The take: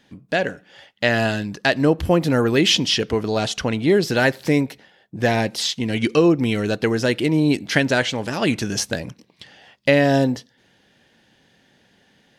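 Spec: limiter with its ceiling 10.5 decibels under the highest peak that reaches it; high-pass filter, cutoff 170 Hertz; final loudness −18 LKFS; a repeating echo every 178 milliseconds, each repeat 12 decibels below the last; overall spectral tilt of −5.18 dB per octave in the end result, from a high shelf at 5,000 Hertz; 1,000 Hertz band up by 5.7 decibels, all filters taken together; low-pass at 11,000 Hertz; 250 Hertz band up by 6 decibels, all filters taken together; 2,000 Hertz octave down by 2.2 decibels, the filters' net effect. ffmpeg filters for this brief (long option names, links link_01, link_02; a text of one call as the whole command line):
ffmpeg -i in.wav -af "highpass=170,lowpass=11000,equalizer=frequency=250:width_type=o:gain=8,equalizer=frequency=1000:width_type=o:gain=9,equalizer=frequency=2000:width_type=o:gain=-5.5,highshelf=frequency=5000:gain=-5,alimiter=limit=-10.5dB:level=0:latency=1,aecho=1:1:178|356|534:0.251|0.0628|0.0157,volume=3dB" out.wav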